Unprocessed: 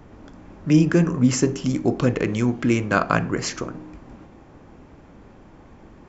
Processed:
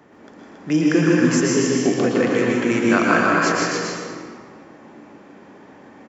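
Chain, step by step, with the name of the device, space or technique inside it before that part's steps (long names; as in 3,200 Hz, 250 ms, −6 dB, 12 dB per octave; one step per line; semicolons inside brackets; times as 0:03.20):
stadium PA (high-pass filter 230 Hz 12 dB per octave; parametric band 1,800 Hz +6 dB 0.23 octaves; loudspeakers that aren't time-aligned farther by 53 metres −5 dB, 94 metres −5 dB; convolution reverb RT60 1.6 s, pre-delay 108 ms, DRR −2.5 dB)
level −1 dB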